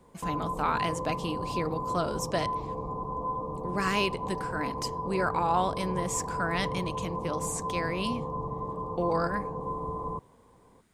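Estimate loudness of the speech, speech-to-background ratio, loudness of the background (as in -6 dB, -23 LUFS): -32.0 LUFS, 2.5 dB, -34.5 LUFS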